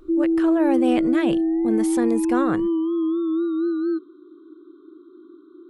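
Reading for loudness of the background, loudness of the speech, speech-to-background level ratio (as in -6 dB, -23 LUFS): -22.0 LUFS, -25.5 LUFS, -3.5 dB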